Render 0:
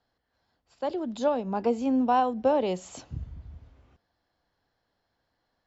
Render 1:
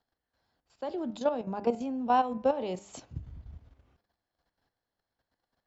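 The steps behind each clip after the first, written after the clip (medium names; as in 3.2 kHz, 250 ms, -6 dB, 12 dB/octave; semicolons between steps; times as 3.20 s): level held to a coarse grid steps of 11 dB; de-hum 100.9 Hz, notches 27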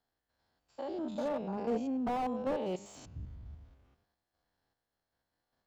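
spectrogram pixelated in time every 100 ms; slew-rate limiter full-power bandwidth 19 Hz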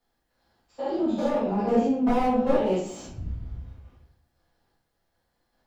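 reverberation RT60 0.60 s, pre-delay 4 ms, DRR -8 dB; trim +1 dB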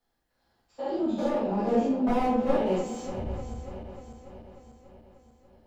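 backward echo that repeats 295 ms, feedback 71%, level -12 dB; trim -2.5 dB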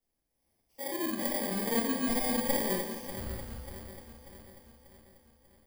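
bit-reversed sample order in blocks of 32 samples; on a send: delay 170 ms -11.5 dB; on the sum: trim -5.5 dB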